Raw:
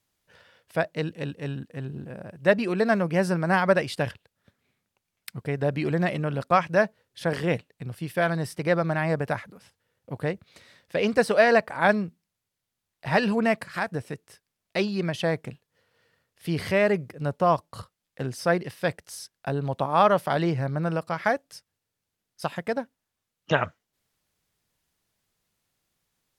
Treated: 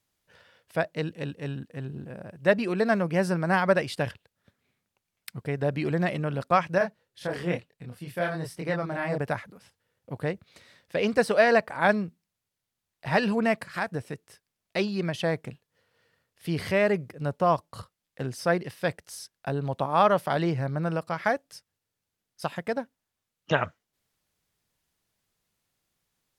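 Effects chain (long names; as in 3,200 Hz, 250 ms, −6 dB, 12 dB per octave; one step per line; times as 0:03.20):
0:06.78–0:09.18: multi-voice chorus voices 2, 1.1 Hz, delay 26 ms, depth 3 ms
level −1.5 dB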